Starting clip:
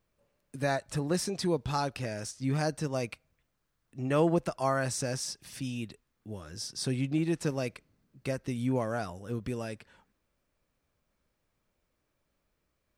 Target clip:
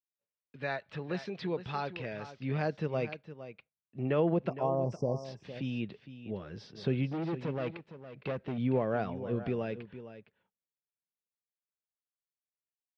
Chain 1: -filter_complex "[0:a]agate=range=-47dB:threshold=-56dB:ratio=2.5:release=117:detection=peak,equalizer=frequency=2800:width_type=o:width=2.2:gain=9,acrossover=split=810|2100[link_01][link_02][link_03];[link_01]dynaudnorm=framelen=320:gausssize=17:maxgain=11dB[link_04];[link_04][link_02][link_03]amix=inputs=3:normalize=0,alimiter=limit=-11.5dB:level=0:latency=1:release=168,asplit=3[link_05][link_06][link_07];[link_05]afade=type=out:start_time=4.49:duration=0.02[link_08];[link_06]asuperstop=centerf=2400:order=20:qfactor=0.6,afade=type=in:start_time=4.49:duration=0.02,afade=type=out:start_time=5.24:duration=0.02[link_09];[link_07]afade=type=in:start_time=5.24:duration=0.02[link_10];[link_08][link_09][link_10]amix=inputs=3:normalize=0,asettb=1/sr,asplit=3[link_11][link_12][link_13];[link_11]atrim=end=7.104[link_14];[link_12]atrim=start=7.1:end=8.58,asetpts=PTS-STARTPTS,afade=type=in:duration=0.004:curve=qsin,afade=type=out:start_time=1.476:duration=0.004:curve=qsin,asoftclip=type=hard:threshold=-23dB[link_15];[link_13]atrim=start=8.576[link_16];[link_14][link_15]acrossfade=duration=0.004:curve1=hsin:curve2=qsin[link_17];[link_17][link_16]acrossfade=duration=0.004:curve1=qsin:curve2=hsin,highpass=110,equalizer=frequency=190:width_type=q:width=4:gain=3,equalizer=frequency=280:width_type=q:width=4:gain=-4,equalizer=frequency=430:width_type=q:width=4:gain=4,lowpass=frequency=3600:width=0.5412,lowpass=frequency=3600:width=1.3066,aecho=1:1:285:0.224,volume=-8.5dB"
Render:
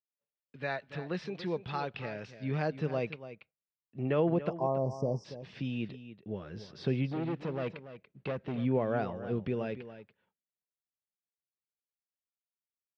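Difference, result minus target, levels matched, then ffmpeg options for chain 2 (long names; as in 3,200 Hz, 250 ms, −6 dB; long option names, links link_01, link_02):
echo 176 ms early
-filter_complex "[0:a]agate=range=-47dB:threshold=-56dB:ratio=2.5:release=117:detection=peak,equalizer=frequency=2800:width_type=o:width=2.2:gain=9,acrossover=split=810|2100[link_01][link_02][link_03];[link_01]dynaudnorm=framelen=320:gausssize=17:maxgain=11dB[link_04];[link_04][link_02][link_03]amix=inputs=3:normalize=0,alimiter=limit=-11.5dB:level=0:latency=1:release=168,asplit=3[link_05][link_06][link_07];[link_05]afade=type=out:start_time=4.49:duration=0.02[link_08];[link_06]asuperstop=centerf=2400:order=20:qfactor=0.6,afade=type=in:start_time=4.49:duration=0.02,afade=type=out:start_time=5.24:duration=0.02[link_09];[link_07]afade=type=in:start_time=5.24:duration=0.02[link_10];[link_08][link_09][link_10]amix=inputs=3:normalize=0,asettb=1/sr,asplit=3[link_11][link_12][link_13];[link_11]atrim=end=7.104[link_14];[link_12]atrim=start=7.1:end=8.58,asetpts=PTS-STARTPTS,afade=type=in:duration=0.004:curve=qsin,afade=type=out:start_time=1.476:duration=0.004:curve=qsin,asoftclip=type=hard:threshold=-23dB[link_15];[link_13]atrim=start=8.576[link_16];[link_14][link_15]acrossfade=duration=0.004:curve1=hsin:curve2=qsin[link_17];[link_17][link_16]acrossfade=duration=0.004:curve1=qsin:curve2=hsin,highpass=110,equalizer=frequency=190:width_type=q:width=4:gain=3,equalizer=frequency=280:width_type=q:width=4:gain=-4,equalizer=frequency=430:width_type=q:width=4:gain=4,lowpass=frequency=3600:width=0.5412,lowpass=frequency=3600:width=1.3066,aecho=1:1:461:0.224,volume=-8.5dB"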